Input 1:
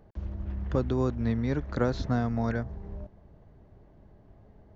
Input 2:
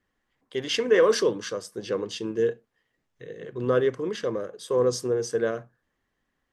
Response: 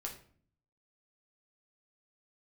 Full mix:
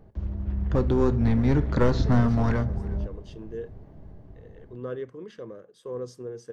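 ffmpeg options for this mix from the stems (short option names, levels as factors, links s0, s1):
-filter_complex "[0:a]dynaudnorm=f=370:g=5:m=1.78,aeval=exprs='clip(val(0),-1,0.1)':c=same,volume=0.631,asplit=4[s0][s1][s2][s3];[s1]volume=0.668[s4];[s2]volume=0.126[s5];[1:a]bass=f=250:g=1,treble=f=4000:g=-5,adelay=1150,volume=0.188[s6];[s3]apad=whole_len=338633[s7];[s6][s7]sidechaincompress=threshold=0.0178:ratio=8:attack=16:release=1200[s8];[2:a]atrim=start_sample=2205[s9];[s4][s9]afir=irnorm=-1:irlink=0[s10];[s5]aecho=0:1:359:1[s11];[s0][s8][s10][s11]amix=inputs=4:normalize=0,lowshelf=f=430:g=6"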